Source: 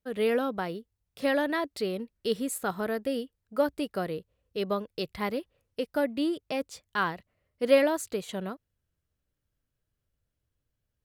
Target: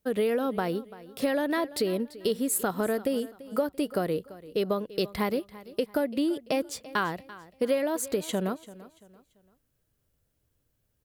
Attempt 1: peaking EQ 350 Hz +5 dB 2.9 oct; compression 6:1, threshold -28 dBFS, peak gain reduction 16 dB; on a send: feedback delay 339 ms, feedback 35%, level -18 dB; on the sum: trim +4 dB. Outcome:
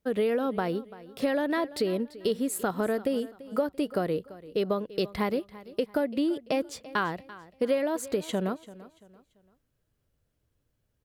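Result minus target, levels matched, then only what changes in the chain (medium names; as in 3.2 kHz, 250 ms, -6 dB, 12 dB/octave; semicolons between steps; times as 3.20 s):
8 kHz band -5.5 dB
add after compression: treble shelf 7.3 kHz +9.5 dB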